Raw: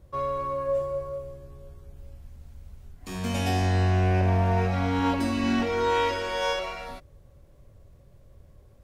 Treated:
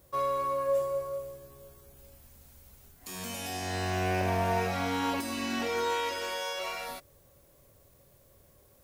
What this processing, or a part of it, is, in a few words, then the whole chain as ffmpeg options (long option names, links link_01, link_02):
de-esser from a sidechain: -filter_complex "[0:a]asplit=2[link_01][link_02];[link_02]highpass=6900,apad=whole_len=389605[link_03];[link_01][link_03]sidechaincompress=threshold=-54dB:ratio=4:attack=3.4:release=31,aemphasis=mode=production:type=bsi"